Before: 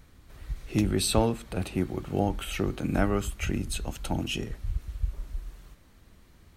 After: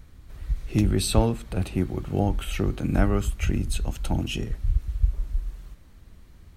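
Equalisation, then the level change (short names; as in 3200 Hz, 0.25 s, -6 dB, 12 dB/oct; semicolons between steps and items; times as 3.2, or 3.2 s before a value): low shelf 140 Hz +9 dB; 0.0 dB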